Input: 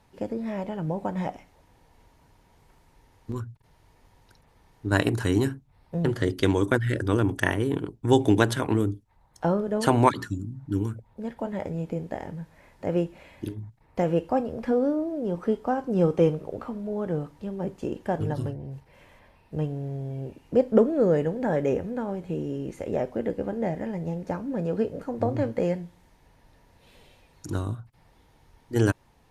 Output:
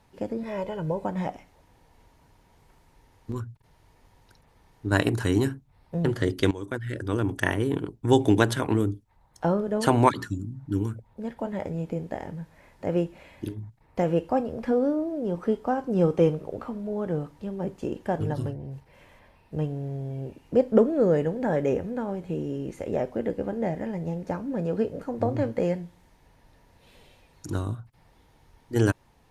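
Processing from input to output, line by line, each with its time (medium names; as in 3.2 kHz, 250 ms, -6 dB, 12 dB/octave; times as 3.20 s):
0.43–1.05 s: comb 2 ms
6.51–7.58 s: fade in, from -15.5 dB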